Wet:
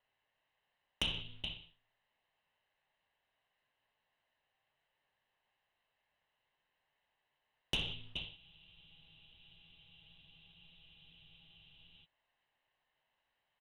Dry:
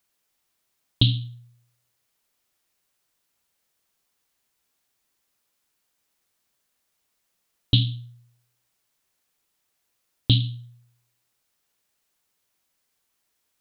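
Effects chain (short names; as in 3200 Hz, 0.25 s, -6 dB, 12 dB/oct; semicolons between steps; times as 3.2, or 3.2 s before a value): minimum comb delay 0.96 ms; low shelf 88 Hz -7 dB; on a send: echo 0.422 s -22.5 dB; on the sum: gate -48 dBFS, range -8 dB; mistuned SSB -230 Hz 250–3500 Hz; compressor 5:1, threshold -40 dBFS, peak gain reduction 17 dB; non-linear reverb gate 0.21 s falling, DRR 6 dB; soft clip -33.5 dBFS, distortion -11 dB; spectral freeze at 8.38, 3.66 s; gain +8 dB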